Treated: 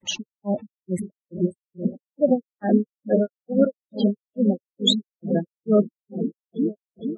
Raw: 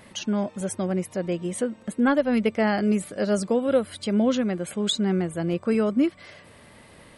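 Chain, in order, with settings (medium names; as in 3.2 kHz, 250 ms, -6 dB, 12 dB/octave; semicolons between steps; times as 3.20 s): delay with an opening low-pass 265 ms, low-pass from 200 Hz, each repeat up 1 oct, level -6 dB; granulator 240 ms, grains 2.3 per s, spray 100 ms, pitch spread up and down by 0 st; spectral gate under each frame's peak -15 dB strong; trim +8 dB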